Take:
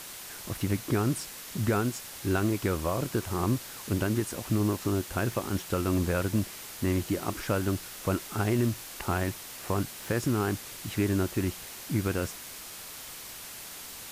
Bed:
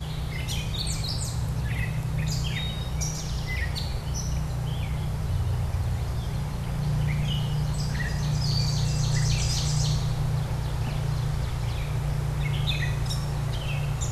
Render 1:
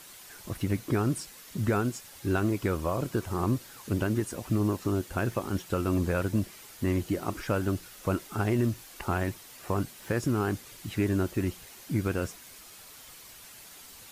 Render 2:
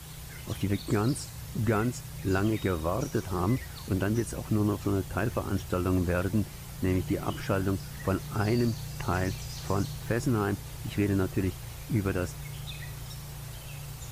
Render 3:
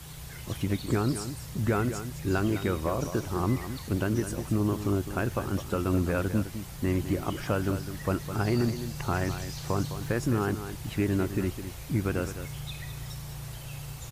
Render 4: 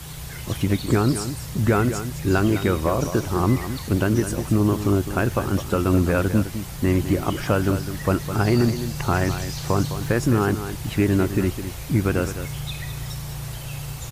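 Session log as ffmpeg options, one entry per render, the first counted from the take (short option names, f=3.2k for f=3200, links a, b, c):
-af "afftdn=nr=8:nf=-43"
-filter_complex "[1:a]volume=-13.5dB[a];[0:a][a]amix=inputs=2:normalize=0"
-af "aecho=1:1:208:0.299"
-af "volume=7.5dB"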